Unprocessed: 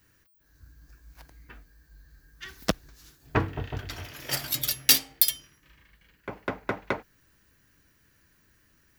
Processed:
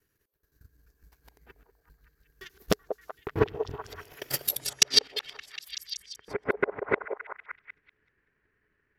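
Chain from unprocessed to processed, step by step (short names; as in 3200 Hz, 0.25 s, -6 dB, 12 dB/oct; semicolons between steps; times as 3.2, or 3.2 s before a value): local time reversal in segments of 86 ms; bell 420 Hz +14 dB 0.29 oct; transient shaper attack +11 dB, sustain -1 dB; low-pass sweep 14000 Hz -> 2000 Hz, 4.46–5.36; on a send: delay with a stepping band-pass 0.19 s, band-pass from 600 Hz, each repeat 0.7 oct, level -4 dB; on the sum: gain -12.5 dB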